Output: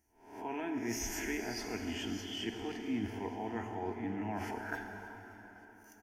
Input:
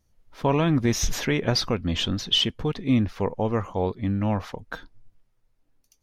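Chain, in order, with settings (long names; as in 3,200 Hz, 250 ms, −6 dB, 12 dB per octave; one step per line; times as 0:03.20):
peak hold with a rise ahead of every peak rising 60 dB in 0.39 s
high-pass filter 190 Hz 6 dB per octave
notch filter 570 Hz, Q 14
reversed playback
downward compressor 10 to 1, threshold −32 dBFS, peak gain reduction 17 dB
reversed playback
phaser with its sweep stopped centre 780 Hz, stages 8
on a send: repeating echo 574 ms, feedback 53%, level −20 dB
on the sum: dense smooth reverb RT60 4 s, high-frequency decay 0.75×, DRR 4 dB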